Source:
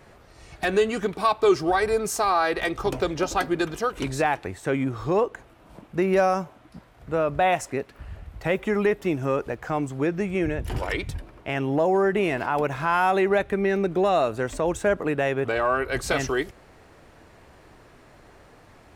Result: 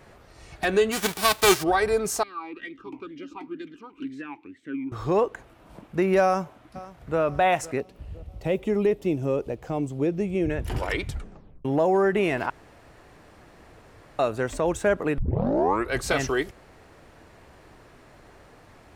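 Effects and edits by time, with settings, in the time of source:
0.91–1.62 spectral whitening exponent 0.3
2.23–4.92 vowel sweep i-u 2.1 Hz
6.24–7.2 echo throw 0.51 s, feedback 55%, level -18 dB
7.8–10.5 EQ curve 520 Hz 0 dB, 1600 Hz -14 dB, 2800 Hz -4 dB
11.08 tape stop 0.57 s
12.5–14.19 room tone
15.18 tape start 0.72 s

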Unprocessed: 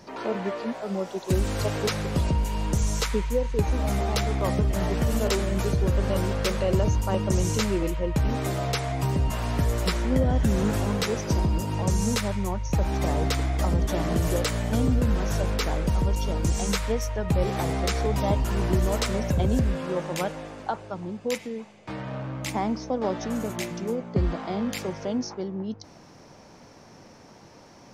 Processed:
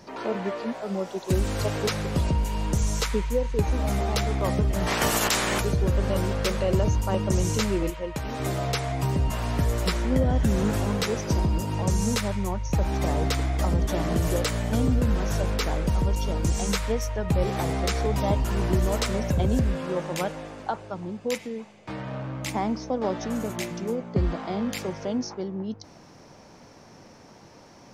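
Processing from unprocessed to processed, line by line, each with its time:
4.86–5.59 spectral limiter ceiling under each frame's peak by 25 dB
7.9–8.4 low shelf 290 Hz -11 dB

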